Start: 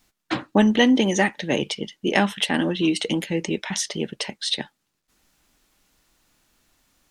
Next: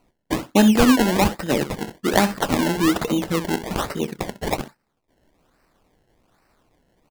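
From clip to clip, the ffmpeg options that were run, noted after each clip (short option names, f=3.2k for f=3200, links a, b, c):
-af "aecho=1:1:28|65:0.188|0.237,acrusher=samples=25:mix=1:aa=0.000001:lfo=1:lforange=25:lforate=1.2,volume=1.5dB"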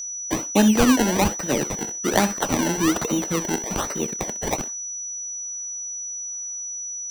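-filter_complex "[0:a]aeval=exprs='val(0)+0.0447*sin(2*PI*5900*n/s)':c=same,acrossover=split=220[a][b];[a]aeval=exprs='val(0)*gte(abs(val(0)),0.02)':c=same[c];[c][b]amix=inputs=2:normalize=0,volume=-2dB"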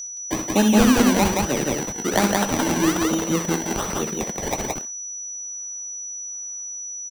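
-af "aecho=1:1:64.14|172:0.398|0.794,volume=-1dB"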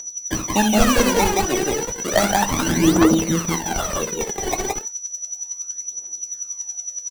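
-af "aphaser=in_gain=1:out_gain=1:delay=2.8:decay=0.66:speed=0.33:type=triangular"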